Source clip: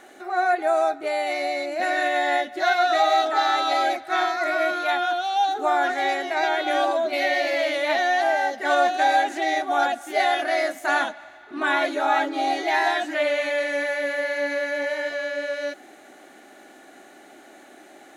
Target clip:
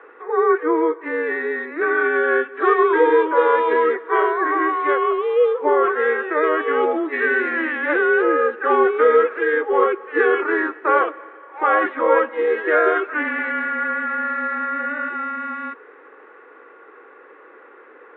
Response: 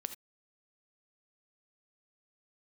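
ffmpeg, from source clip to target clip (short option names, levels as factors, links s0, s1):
-af "highpass=f=560:t=q:w=0.5412,highpass=f=560:t=q:w=1.307,lowpass=f=2500:t=q:w=0.5176,lowpass=f=2500:t=q:w=0.7071,lowpass=f=2500:t=q:w=1.932,afreqshift=-320,highpass=f=370:w=0.5412,highpass=f=370:w=1.3066,volume=2.11"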